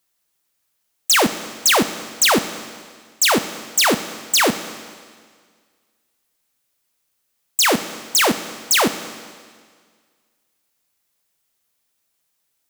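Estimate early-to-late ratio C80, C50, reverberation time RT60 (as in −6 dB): 13.0 dB, 12.0 dB, 1.8 s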